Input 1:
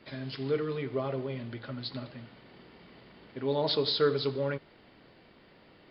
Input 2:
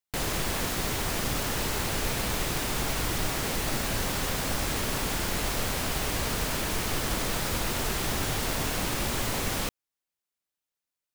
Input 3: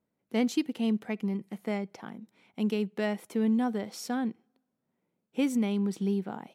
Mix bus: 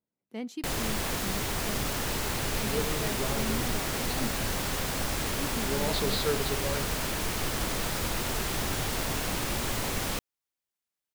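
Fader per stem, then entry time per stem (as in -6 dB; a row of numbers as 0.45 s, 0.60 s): -4.0 dB, -1.5 dB, -10.0 dB; 2.25 s, 0.50 s, 0.00 s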